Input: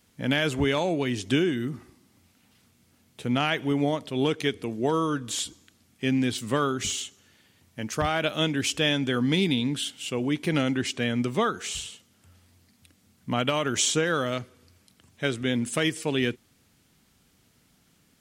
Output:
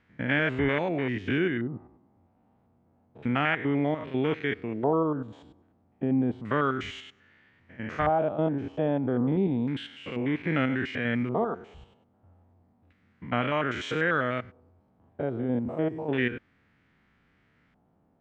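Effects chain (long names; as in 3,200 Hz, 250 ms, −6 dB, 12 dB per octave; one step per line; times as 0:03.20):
spectrum averaged block by block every 100 ms
auto-filter low-pass square 0.31 Hz 790–1,900 Hz
level −1 dB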